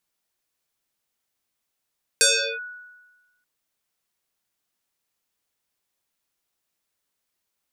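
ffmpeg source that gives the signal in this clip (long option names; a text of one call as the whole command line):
ffmpeg -f lavfi -i "aevalsrc='0.251*pow(10,-3*t/1.24)*sin(2*PI*1470*t+8.4*clip(1-t/0.38,0,1)*sin(2*PI*0.69*1470*t))':duration=1.23:sample_rate=44100" out.wav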